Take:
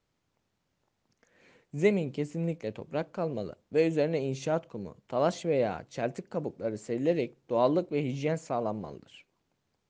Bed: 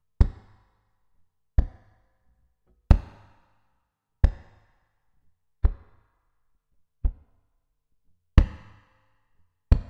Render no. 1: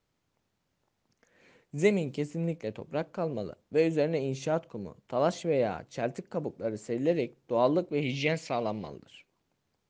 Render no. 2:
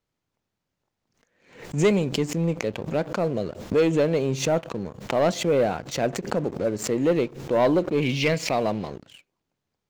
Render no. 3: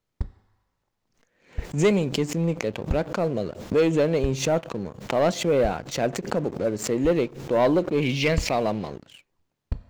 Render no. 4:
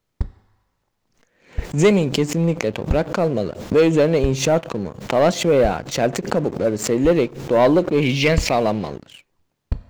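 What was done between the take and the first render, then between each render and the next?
1.78–2.25 s: treble shelf 5.8 kHz +10.5 dB; 8.02–8.88 s: high-order bell 3.2 kHz +11.5 dB
waveshaping leveller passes 2; swell ahead of each attack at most 110 dB/s
add bed -10.5 dB
trim +5.5 dB; peak limiter -3 dBFS, peak gain reduction 1 dB

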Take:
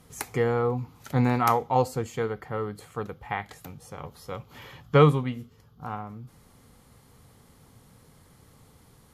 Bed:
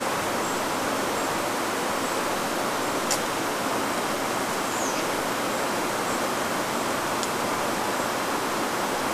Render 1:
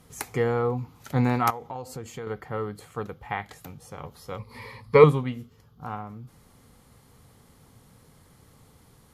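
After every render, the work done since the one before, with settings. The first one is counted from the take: 1.50–2.27 s: compression 5:1, threshold -33 dBFS; 4.38–5.04 s: rippled EQ curve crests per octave 0.92, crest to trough 16 dB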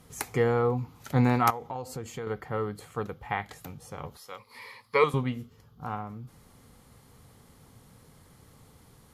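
4.17–5.14 s: high-pass 1.3 kHz 6 dB/octave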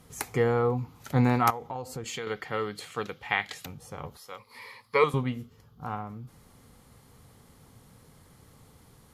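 2.04–3.66 s: frequency weighting D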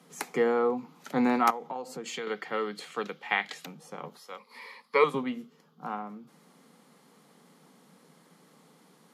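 steep high-pass 160 Hz 72 dB/octave; treble shelf 11 kHz -11.5 dB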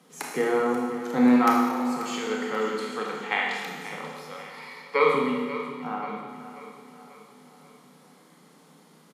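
feedback delay 536 ms, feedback 49%, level -13 dB; Schroeder reverb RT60 1.5 s, combs from 25 ms, DRR -1.5 dB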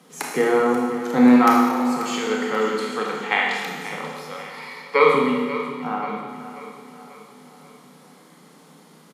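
trim +5.5 dB; peak limiter -2 dBFS, peak gain reduction 1 dB

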